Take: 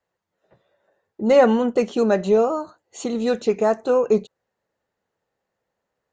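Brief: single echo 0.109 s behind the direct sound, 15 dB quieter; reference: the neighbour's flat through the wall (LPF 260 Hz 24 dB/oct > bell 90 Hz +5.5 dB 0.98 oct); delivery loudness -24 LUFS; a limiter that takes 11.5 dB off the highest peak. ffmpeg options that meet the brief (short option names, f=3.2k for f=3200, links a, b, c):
-af "alimiter=limit=-16dB:level=0:latency=1,lowpass=f=260:w=0.5412,lowpass=f=260:w=1.3066,equalizer=f=90:t=o:w=0.98:g=5.5,aecho=1:1:109:0.178,volume=7.5dB"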